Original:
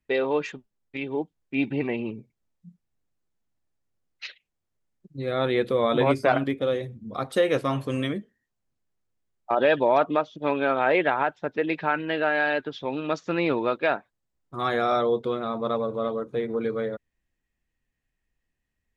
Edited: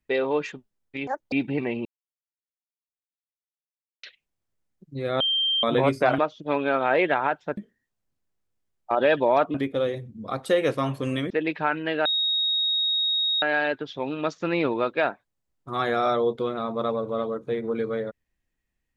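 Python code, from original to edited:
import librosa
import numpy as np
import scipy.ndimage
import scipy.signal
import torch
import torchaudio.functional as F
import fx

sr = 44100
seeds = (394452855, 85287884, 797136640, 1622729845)

y = fx.edit(x, sr, fx.speed_span(start_s=1.07, length_s=0.48, speed=1.9),
    fx.silence(start_s=2.08, length_s=2.18),
    fx.bleep(start_s=5.43, length_s=0.43, hz=3160.0, db=-20.5),
    fx.swap(start_s=6.41, length_s=1.76, other_s=10.14, other_length_s=1.39),
    fx.insert_tone(at_s=12.28, length_s=1.37, hz=3760.0, db=-21.0), tone=tone)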